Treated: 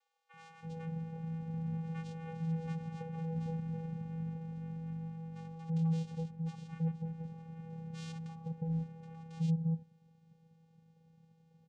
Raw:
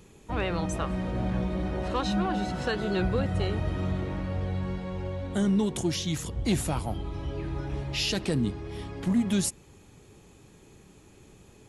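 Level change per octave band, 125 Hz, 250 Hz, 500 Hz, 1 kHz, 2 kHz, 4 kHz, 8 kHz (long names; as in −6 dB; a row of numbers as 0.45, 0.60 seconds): −5.5 dB, −10.0 dB, −17.5 dB, −16.0 dB, −20.5 dB, below −25 dB, below −25 dB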